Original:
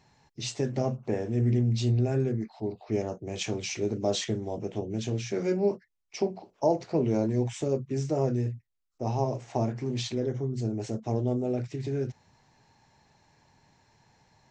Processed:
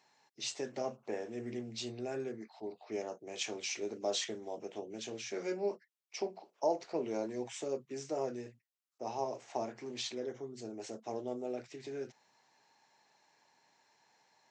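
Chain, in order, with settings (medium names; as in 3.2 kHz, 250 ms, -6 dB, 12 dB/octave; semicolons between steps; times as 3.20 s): high-pass 270 Hz 12 dB/octave; bass shelf 380 Hz -9.5 dB; trim -3.5 dB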